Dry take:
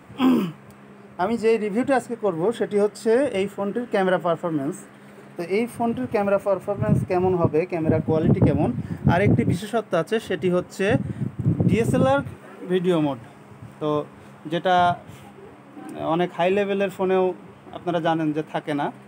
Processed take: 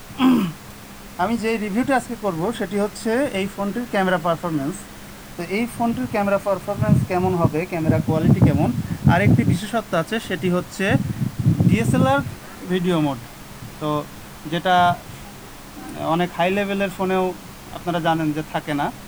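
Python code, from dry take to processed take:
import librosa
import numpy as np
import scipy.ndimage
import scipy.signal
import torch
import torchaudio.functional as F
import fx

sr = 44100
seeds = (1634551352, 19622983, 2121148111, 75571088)

y = fx.peak_eq(x, sr, hz=440.0, db=-9.5, octaves=0.73)
y = fx.dmg_noise_colour(y, sr, seeds[0], colour='pink', level_db=-45.0)
y = F.gain(torch.from_numpy(y), 4.5).numpy()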